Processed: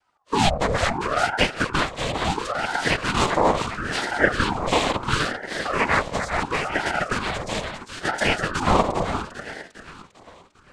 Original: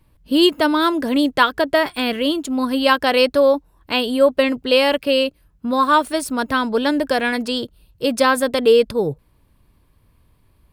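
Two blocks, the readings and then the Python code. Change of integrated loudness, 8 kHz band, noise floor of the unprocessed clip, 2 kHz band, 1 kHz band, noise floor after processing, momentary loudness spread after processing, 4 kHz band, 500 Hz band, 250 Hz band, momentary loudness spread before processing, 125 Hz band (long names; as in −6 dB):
−5.5 dB, +0.5 dB, −59 dBFS, −1.0 dB, −2.5 dB, −55 dBFS, 9 LU, −6.0 dB, −9.0 dB, −9.0 dB, 8 LU, can't be measured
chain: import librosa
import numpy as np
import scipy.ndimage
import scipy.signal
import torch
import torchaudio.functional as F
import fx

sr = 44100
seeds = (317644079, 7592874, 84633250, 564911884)

y = fx.echo_split(x, sr, split_hz=550.0, low_ms=83, high_ms=400, feedback_pct=52, wet_db=-7.0)
y = fx.noise_vocoder(y, sr, seeds[0], bands=6)
y = fx.ring_lfo(y, sr, carrier_hz=680.0, swing_pct=70, hz=0.73)
y = y * librosa.db_to_amplitude(-3.0)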